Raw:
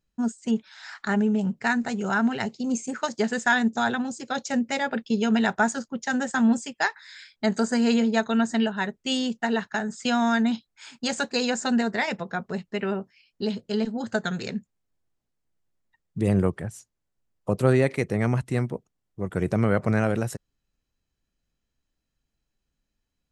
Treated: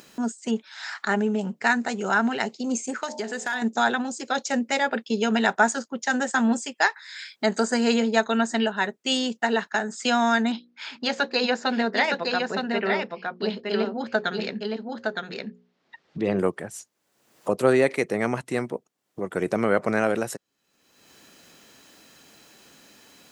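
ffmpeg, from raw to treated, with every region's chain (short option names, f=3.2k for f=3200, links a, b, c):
-filter_complex "[0:a]asettb=1/sr,asplit=3[a][b][c];[a]atrim=end=3.034[d];[b]atrim=start=3.03:end=3.62,asetpts=PTS-STARTPTS,afade=t=in:d=0.004:c=qsin,afade=t=out:st=0.586:d=0.004:c=qsin,bandreject=f=47.06:t=h:w=4,bandreject=f=94.12:t=h:w=4,bandreject=f=141.18:t=h:w=4,bandreject=f=188.24:t=h:w=4,bandreject=f=235.3:t=h:w=4,bandreject=f=282.36:t=h:w=4,bandreject=f=329.42:t=h:w=4,bandreject=f=376.48:t=h:w=4,bandreject=f=423.54:t=h:w=4,bandreject=f=470.6:t=h:w=4,bandreject=f=517.66:t=h:w=4,bandreject=f=564.72:t=h:w=4,bandreject=f=611.78:t=h:w=4,bandreject=f=658.84:t=h:w=4,bandreject=f=705.9:t=h:w=4,bandreject=f=752.96:t=h:w=4,bandreject=f=800.02:t=h:w=4,bandreject=f=847.08:t=h:w=4,bandreject=f=894.14:t=h:w=4,bandreject=f=941.2:t=h:w=4,bandreject=f=988.26:t=h:w=4,bandreject=f=1.03532k:t=h:w=4,acompressor=threshold=-31dB:ratio=2.5:attack=3.2:release=140:knee=1:detection=peak,asoftclip=type=hard:threshold=-24dB[e];[c]atrim=start=3.616[f];[d][e]acrossfade=d=0.004:c1=hsin:c2=qsin[g];[g][f]acrossfade=d=0.004:c1=qsin:c2=hsin,asettb=1/sr,asplit=3[h][i][j];[h]atrim=end=10.524[k];[i]atrim=start=10.52:end=16.39,asetpts=PTS-STARTPTS,afade=t=in:d=0.004:c=qsin,afade=t=out:st=5.866:d=0.004:c=qsin,lowpass=f=4.8k:w=0.5412,lowpass=f=4.8k:w=1.3066,bandreject=f=60:t=h:w=6,bandreject=f=120:t=h:w=6,bandreject=f=180:t=h:w=6,bandreject=f=240:t=h:w=6,bandreject=f=300:t=h:w=6,bandreject=f=360:t=h:w=6,bandreject=f=420:t=h:w=6,bandreject=f=480:t=h:w=6,bandreject=f=540:t=h:w=6,aecho=1:1:914:0.631,atrim=end_sample=258867[l];[j]atrim=start=16.386[m];[k][l]acrossfade=d=0.004:c1=hsin:c2=qsin[n];[n][m]acrossfade=d=0.004:c1=qsin:c2=hsin,highpass=290,acompressor=mode=upward:threshold=-32dB:ratio=2.5,volume=3.5dB"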